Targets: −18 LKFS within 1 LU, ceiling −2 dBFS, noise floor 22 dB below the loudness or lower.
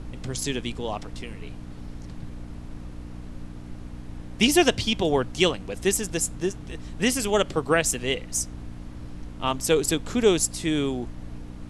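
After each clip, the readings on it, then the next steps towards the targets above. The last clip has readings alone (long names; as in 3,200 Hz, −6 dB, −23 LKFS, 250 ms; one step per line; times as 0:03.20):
mains hum 60 Hz; hum harmonics up to 300 Hz; level of the hum −38 dBFS; background noise floor −40 dBFS; target noise floor −47 dBFS; integrated loudness −24.5 LKFS; sample peak −6.0 dBFS; target loudness −18.0 LKFS
→ hum removal 60 Hz, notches 5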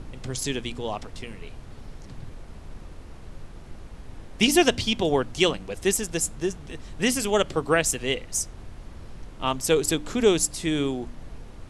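mains hum none found; background noise floor −43 dBFS; target noise floor −47 dBFS
→ noise reduction from a noise print 6 dB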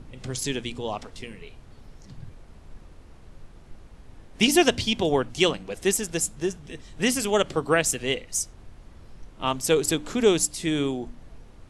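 background noise floor −49 dBFS; integrated loudness −24.5 LKFS; sample peak −5.5 dBFS; target loudness −18.0 LKFS
→ level +6.5 dB
brickwall limiter −2 dBFS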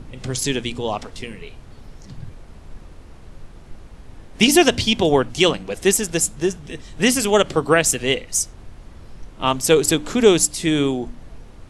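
integrated loudness −18.5 LKFS; sample peak −2.0 dBFS; background noise floor −43 dBFS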